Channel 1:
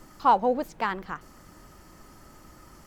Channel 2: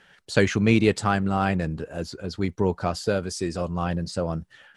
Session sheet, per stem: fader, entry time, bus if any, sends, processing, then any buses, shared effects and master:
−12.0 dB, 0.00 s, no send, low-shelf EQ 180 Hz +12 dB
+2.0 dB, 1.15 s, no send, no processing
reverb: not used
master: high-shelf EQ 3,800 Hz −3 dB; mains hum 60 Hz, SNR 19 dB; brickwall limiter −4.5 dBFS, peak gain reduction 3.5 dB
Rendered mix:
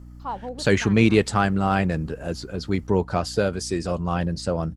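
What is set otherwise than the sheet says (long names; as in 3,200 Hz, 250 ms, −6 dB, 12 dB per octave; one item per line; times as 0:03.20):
stem 2: entry 1.15 s → 0.30 s
master: missing high-shelf EQ 3,800 Hz −3 dB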